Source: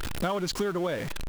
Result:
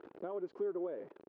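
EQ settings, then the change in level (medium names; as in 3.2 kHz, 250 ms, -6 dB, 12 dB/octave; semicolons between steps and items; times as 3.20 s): ladder band-pass 450 Hz, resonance 50%; -1.0 dB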